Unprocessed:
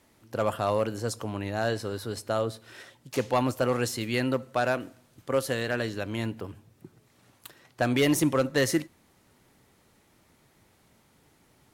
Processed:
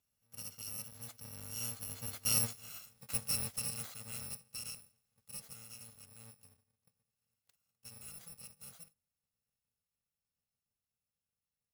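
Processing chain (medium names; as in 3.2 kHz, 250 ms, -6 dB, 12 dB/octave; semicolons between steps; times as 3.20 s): bit-reversed sample order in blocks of 128 samples; Doppler pass-by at 2.60 s, 6 m/s, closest 1.4 m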